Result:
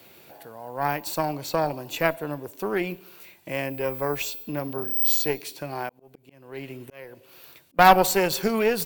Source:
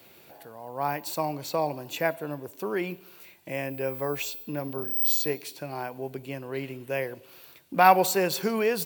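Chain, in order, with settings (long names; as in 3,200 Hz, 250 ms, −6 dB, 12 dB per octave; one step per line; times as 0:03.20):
harmonic generator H 6 −18 dB, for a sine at −3.5 dBFS
0:05.89–0:07.79: volume swells 572 ms
level +2.5 dB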